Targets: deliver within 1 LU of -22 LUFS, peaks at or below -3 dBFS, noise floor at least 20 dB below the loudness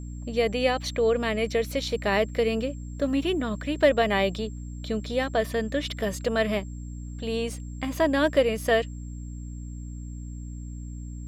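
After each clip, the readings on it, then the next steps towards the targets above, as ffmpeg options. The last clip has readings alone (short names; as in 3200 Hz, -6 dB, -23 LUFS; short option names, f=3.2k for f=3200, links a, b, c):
hum 60 Hz; harmonics up to 300 Hz; hum level -34 dBFS; steady tone 7500 Hz; tone level -54 dBFS; loudness -26.0 LUFS; peak -9.0 dBFS; loudness target -22.0 LUFS
-> -af "bandreject=f=60:t=h:w=6,bandreject=f=120:t=h:w=6,bandreject=f=180:t=h:w=6,bandreject=f=240:t=h:w=6,bandreject=f=300:t=h:w=6"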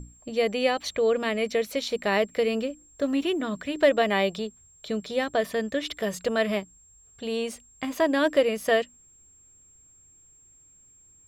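hum none; steady tone 7500 Hz; tone level -54 dBFS
-> -af "bandreject=f=7.5k:w=30"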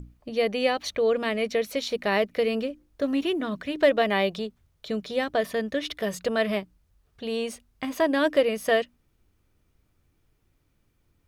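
steady tone none; loudness -26.5 LUFS; peak -10.0 dBFS; loudness target -22.0 LUFS
-> -af "volume=4.5dB"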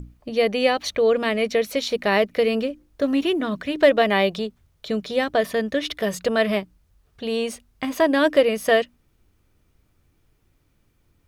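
loudness -22.0 LUFS; peak -5.5 dBFS; noise floor -65 dBFS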